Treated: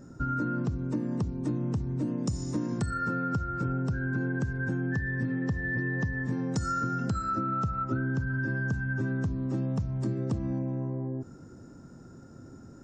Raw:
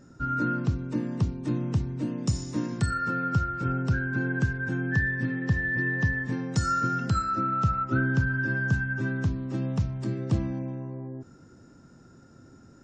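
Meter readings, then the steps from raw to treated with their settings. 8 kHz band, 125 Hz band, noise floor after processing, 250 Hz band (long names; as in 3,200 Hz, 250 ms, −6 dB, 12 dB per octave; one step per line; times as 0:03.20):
−4.5 dB, −2.5 dB, −49 dBFS, −1.0 dB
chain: parametric band 2,900 Hz −9.5 dB 1.9 octaves
in parallel at 0 dB: brickwall limiter −23 dBFS, peak gain reduction 9.5 dB
on the sum: downward compressor, threshold −25 dBFS, peak gain reduction 9 dB
level −1.5 dB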